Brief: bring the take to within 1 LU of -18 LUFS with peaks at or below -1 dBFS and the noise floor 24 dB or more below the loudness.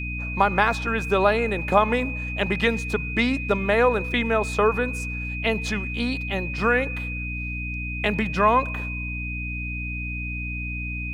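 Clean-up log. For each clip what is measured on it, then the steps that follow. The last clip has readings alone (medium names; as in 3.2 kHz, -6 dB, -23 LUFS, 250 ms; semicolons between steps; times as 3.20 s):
hum 60 Hz; highest harmonic 300 Hz; hum level -29 dBFS; steady tone 2.5 kHz; tone level -31 dBFS; loudness -24.0 LUFS; peak level -4.0 dBFS; loudness target -18.0 LUFS
-> hum notches 60/120/180/240/300 Hz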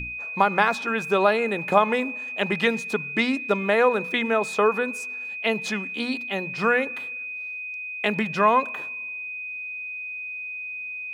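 hum not found; steady tone 2.5 kHz; tone level -31 dBFS
-> band-stop 2.5 kHz, Q 30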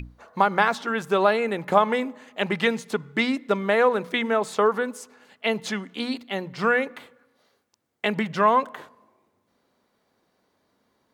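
steady tone not found; loudness -24.0 LUFS; peak level -4.5 dBFS; loudness target -18.0 LUFS
-> trim +6 dB; peak limiter -1 dBFS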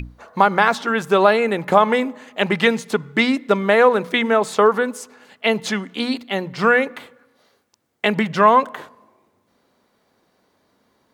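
loudness -18.0 LUFS; peak level -1.0 dBFS; noise floor -65 dBFS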